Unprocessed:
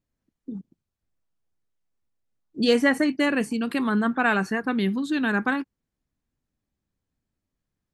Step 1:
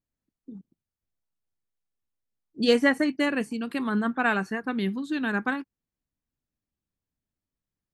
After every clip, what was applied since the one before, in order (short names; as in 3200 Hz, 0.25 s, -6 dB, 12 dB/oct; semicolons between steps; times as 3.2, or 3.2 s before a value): upward expander 1.5:1, over -31 dBFS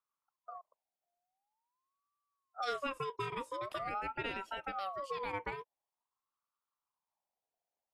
compressor 3:1, threshold -32 dBFS, peak gain reduction 12.5 dB; ring modulator with a swept carrier 930 Hz, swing 25%, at 0.46 Hz; gain -3 dB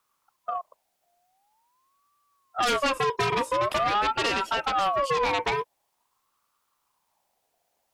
sine folder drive 11 dB, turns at -22.5 dBFS; gain +3 dB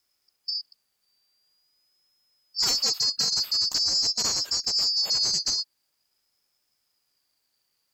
band-swap scrambler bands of 4000 Hz